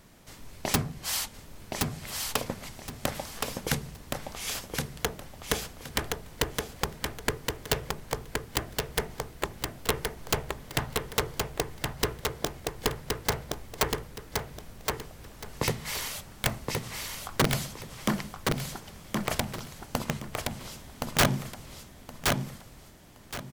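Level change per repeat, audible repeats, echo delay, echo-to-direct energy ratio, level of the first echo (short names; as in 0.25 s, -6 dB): -12.0 dB, 3, 1.07 s, -3.0 dB, -3.5 dB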